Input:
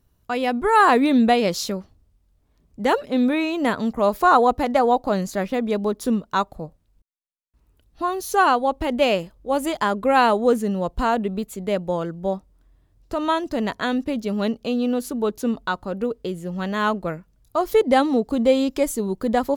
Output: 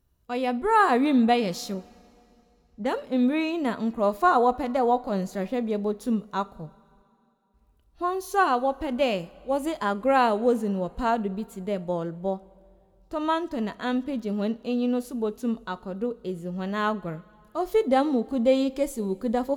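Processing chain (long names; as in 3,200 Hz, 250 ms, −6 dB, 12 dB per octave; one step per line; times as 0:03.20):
0:01.74–0:02.99: low-pass that shuts in the quiet parts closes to 360 Hz, open at −19 dBFS
harmonic and percussive parts rebalanced percussive −7 dB
coupled-rooms reverb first 0.32 s, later 2.9 s, from −18 dB, DRR 14.5 dB
level −3.5 dB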